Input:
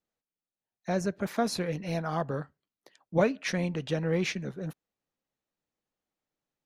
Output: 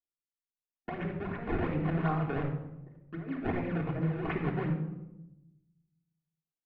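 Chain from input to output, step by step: level-controlled noise filter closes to 970 Hz, open at -25 dBFS; decimation with a swept rate 25×, swing 160% 2.7 Hz; band-stop 590 Hz, Q 12; gate with hold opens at -49 dBFS; hum notches 60/120/180 Hz; compressor with a negative ratio -33 dBFS, ratio -0.5; inverse Chebyshev low-pass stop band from 11 kHz, stop band 80 dB; simulated room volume 3700 m³, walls furnished, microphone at 3.3 m; trim -1.5 dB

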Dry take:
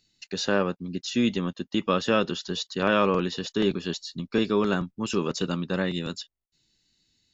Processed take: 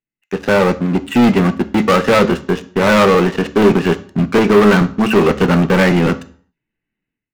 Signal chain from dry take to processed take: steep low-pass 2.5 kHz 48 dB/octave; peaking EQ 66 Hz -8.5 dB 2.2 oct; level rider gain up to 15 dB; waveshaping leveller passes 5; on a send: reverberation RT60 0.50 s, pre-delay 3 ms, DRR 11.5 dB; on the sum: trim -6 dB

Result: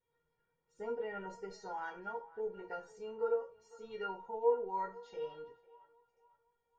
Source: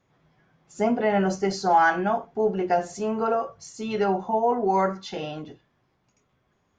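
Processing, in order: peaking EQ 6.4 kHz -11.5 dB 1.7 oct; feedback comb 470 Hz, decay 0.19 s, harmonics all, mix 100%; band-passed feedback delay 501 ms, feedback 43%, band-pass 1.1 kHz, level -18 dB; trim +1 dB

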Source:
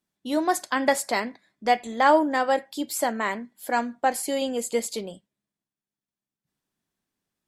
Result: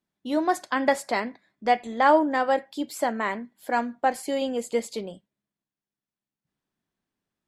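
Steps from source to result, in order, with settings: treble shelf 5.5 kHz -11.5 dB

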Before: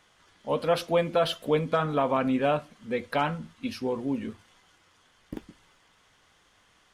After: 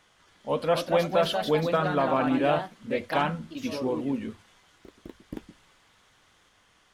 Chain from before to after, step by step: ever faster or slower copies 311 ms, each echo +2 st, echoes 2, each echo -6 dB

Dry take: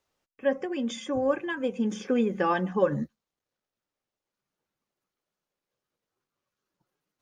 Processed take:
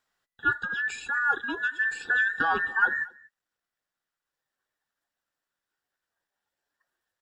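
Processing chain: every band turned upside down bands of 2 kHz; on a send: delay 232 ms -24 dB

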